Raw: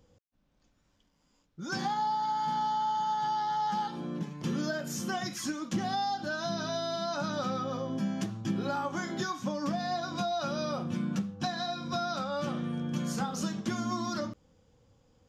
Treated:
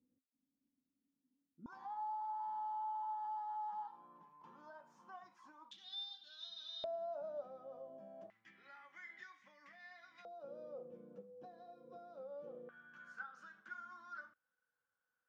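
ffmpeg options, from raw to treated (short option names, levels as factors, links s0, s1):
-af "asetnsamples=n=441:p=0,asendcmd='1.66 bandpass f 970;5.71 bandpass f 3600;6.84 bandpass f 630;8.3 bandpass f 2000;10.25 bandpass f 490;12.69 bandpass f 1500',bandpass=f=260:t=q:w=15:csg=0"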